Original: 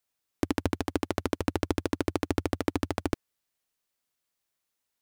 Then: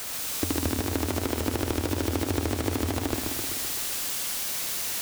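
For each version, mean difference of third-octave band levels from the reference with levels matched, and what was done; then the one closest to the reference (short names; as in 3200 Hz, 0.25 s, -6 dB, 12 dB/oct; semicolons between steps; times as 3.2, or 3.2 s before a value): 5.5 dB: zero-crossing step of -25.5 dBFS; thin delay 71 ms, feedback 84%, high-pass 3200 Hz, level -4 dB; warbling echo 0.128 s, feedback 66%, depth 135 cents, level -5 dB; gain -3 dB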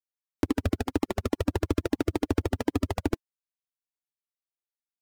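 3.0 dB: sample leveller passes 3; in parallel at +2 dB: limiter -17.5 dBFS, peak gain reduction 8.5 dB; on the sum: spectral noise reduction 13 dB; gain -8 dB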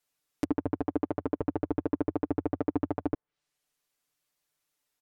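11.0 dB: treble ducked by the level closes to 950 Hz, closed at -29.5 dBFS; comb 6.8 ms, depth 80%; limiter -15.5 dBFS, peak gain reduction 5 dB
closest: second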